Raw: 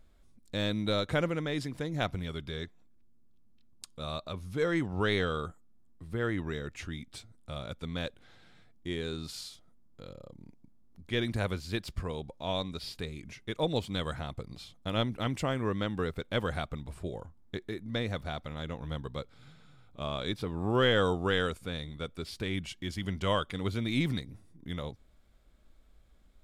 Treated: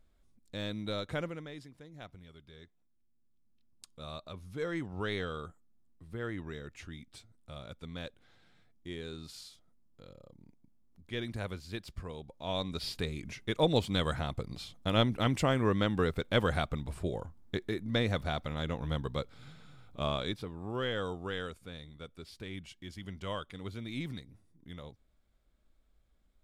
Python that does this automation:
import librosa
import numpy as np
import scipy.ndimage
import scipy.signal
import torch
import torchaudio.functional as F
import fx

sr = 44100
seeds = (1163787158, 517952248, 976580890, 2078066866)

y = fx.gain(x, sr, db=fx.line((1.2, -6.5), (1.76, -17.0), (2.43, -17.0), (3.88, -6.5), (12.26, -6.5), (12.84, 3.0), (20.09, 3.0), (20.58, -9.0)))